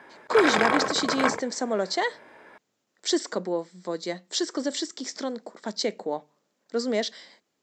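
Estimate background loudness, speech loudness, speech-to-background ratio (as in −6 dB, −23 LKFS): −25.5 LKFS, −28.5 LKFS, −3.0 dB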